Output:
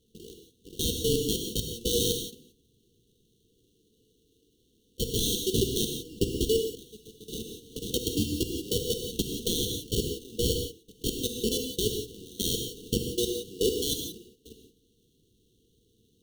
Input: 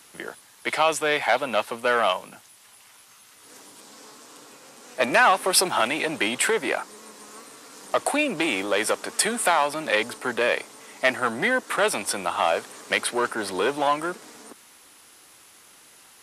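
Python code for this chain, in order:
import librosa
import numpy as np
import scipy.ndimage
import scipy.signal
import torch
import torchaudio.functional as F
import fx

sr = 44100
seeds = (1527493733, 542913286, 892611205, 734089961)

y = fx.block_float(x, sr, bits=3)
y = fx.level_steps(y, sr, step_db=22)
y = fx.sample_hold(y, sr, seeds[0], rate_hz=2500.0, jitter_pct=0)
y = fx.brickwall_bandstop(y, sr, low_hz=500.0, high_hz=2700.0)
y = fx.rev_gated(y, sr, seeds[1], gate_ms=200, shape='flat', drr_db=2.5)
y = fx.band_squash(y, sr, depth_pct=70, at=(7.28, 9.8))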